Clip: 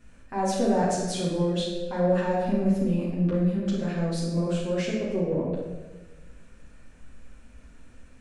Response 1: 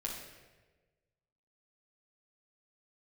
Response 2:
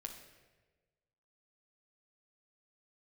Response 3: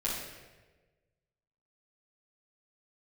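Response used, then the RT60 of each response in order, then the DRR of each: 3; 1.3, 1.3, 1.3 s; -3.0, 3.0, -8.5 dB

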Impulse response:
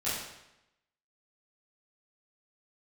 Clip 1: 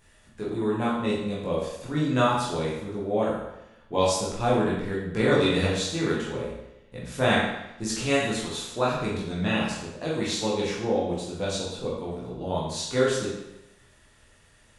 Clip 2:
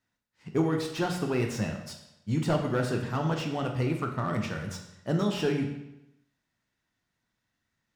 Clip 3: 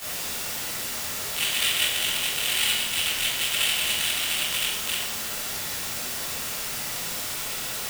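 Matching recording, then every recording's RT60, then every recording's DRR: 3; 0.90, 0.90, 0.90 s; -6.5, 2.5, -12.5 dB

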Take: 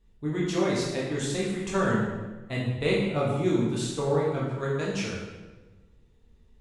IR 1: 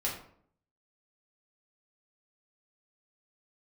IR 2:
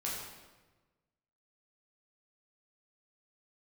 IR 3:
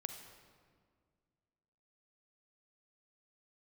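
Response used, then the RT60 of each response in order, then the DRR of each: 2; 0.60, 1.2, 1.9 s; -5.0, -5.5, 6.0 dB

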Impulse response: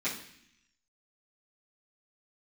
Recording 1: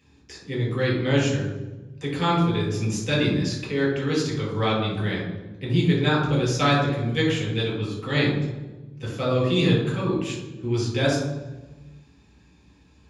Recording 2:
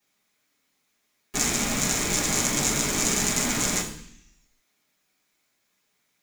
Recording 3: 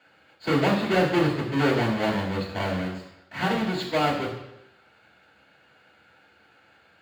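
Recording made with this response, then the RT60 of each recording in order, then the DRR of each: 2; 1.2, 0.65, 0.85 s; -4.0, -12.5, -5.0 dB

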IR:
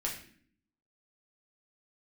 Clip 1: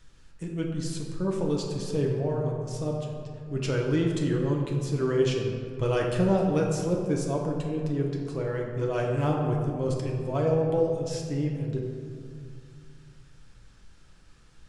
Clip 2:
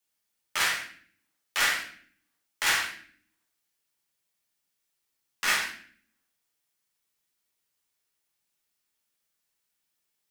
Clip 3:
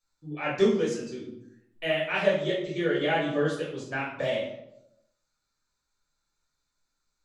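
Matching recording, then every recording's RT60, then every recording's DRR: 2; 2.3, 0.55, 0.85 s; -1.0, -3.0, -8.0 dB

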